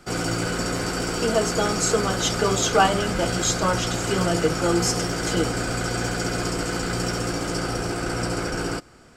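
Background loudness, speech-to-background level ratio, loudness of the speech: −26.0 LKFS, 2.0 dB, −24.0 LKFS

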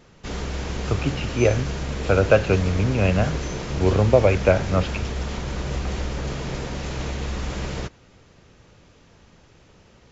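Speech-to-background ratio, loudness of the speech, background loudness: 8.0 dB, −21.5 LKFS, −29.5 LKFS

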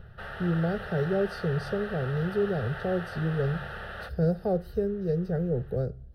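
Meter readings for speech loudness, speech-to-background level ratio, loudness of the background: −29.5 LKFS, 9.5 dB, −39.0 LKFS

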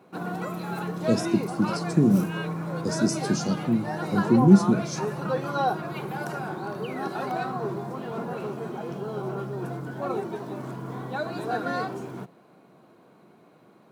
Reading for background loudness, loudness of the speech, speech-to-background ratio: −31.0 LKFS, −23.5 LKFS, 7.5 dB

